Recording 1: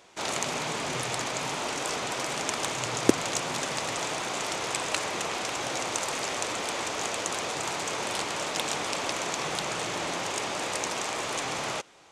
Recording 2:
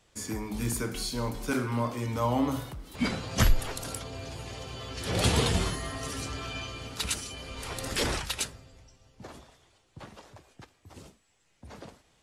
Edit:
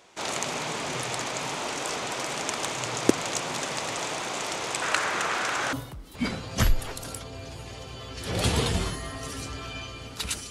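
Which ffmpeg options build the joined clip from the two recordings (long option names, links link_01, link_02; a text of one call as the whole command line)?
ffmpeg -i cue0.wav -i cue1.wav -filter_complex "[0:a]asettb=1/sr,asplit=3[link_01][link_02][link_03];[link_01]atrim=end=4.824[link_04];[link_02]atrim=start=4.82:end=5.73,asetpts=PTS-STARTPTS,afade=type=in:duration=0.004:curve=qsin,afade=type=out:start_time=0.906:duration=0.004:curve=qsin,equalizer=frequency=1500:width=1.6:gain=11[link_05];[link_03]atrim=start=5.726[link_06];[link_04][link_05]acrossfade=duration=0.004:curve1=hsin:curve2=qsin[link_07];[link_07][link_06]acrossfade=duration=0.004:curve1=qsin:curve2=hsin,apad=whole_dur=10.5,atrim=end=10.5,atrim=end=5.732[link_08];[1:a]atrim=start=2.528:end=7.3[link_09];[link_08][link_09]acrossfade=duration=0.004:curve1=hsin:curve2=hsin" out.wav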